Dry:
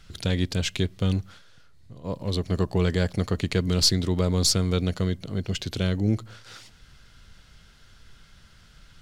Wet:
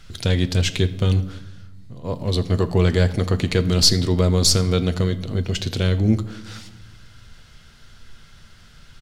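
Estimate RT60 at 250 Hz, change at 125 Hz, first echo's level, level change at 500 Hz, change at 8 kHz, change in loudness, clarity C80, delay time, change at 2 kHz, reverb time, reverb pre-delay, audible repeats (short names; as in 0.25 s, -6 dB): 1.7 s, +6.0 dB, -21.5 dB, +6.0 dB, +5.0 dB, +5.5 dB, 16.5 dB, 82 ms, +5.0 dB, 1.0 s, 8 ms, 1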